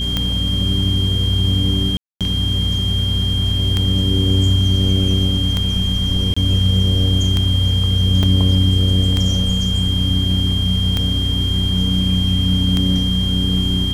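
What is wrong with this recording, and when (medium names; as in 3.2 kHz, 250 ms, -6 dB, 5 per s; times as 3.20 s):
hum 60 Hz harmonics 4 -22 dBFS
tick 33 1/3 rpm -5 dBFS
whine 3.2 kHz -21 dBFS
1.97–2.21 s: dropout 237 ms
6.34–6.37 s: dropout 25 ms
8.23 s: dropout 4.7 ms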